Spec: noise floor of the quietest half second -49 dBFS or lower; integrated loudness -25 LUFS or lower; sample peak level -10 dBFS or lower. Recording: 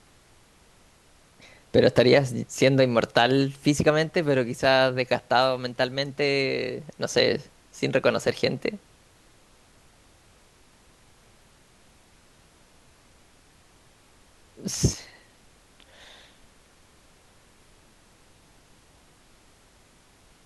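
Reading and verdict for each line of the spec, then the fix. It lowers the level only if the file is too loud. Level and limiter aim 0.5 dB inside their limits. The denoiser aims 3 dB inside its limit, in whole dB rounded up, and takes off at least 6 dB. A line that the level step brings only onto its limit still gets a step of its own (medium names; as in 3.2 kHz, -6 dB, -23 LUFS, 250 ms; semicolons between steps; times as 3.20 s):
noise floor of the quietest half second -57 dBFS: pass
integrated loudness -23.5 LUFS: fail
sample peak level -5.5 dBFS: fail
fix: trim -2 dB; peak limiter -10.5 dBFS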